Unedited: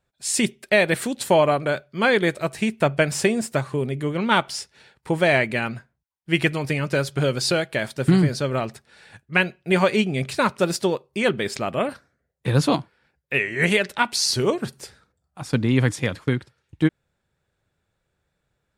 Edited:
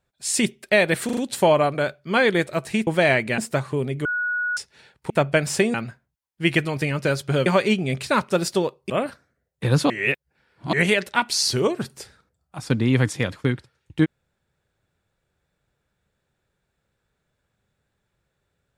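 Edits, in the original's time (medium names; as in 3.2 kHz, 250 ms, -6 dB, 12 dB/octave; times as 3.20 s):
1.05 s: stutter 0.04 s, 4 plays
2.75–3.39 s: swap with 5.11–5.62 s
4.06–4.58 s: bleep 1.46 kHz -21.5 dBFS
7.34–9.74 s: delete
11.18–11.73 s: delete
12.73–13.56 s: reverse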